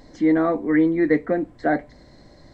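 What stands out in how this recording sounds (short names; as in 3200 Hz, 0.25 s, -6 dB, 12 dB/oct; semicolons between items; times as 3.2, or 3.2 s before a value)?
noise floor -49 dBFS; spectral tilt -3.5 dB/oct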